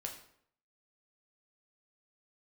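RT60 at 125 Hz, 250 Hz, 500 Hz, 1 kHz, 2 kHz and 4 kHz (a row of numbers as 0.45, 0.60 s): 0.70, 0.70, 0.70, 0.65, 0.60, 0.50 s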